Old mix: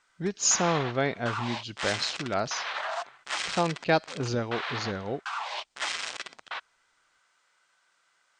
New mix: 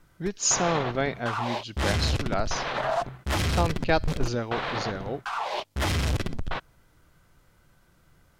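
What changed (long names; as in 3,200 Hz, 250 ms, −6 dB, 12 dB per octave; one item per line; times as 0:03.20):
background: remove high-pass filter 1,100 Hz 12 dB per octave
master: remove Butterworth low-pass 8,900 Hz 72 dB per octave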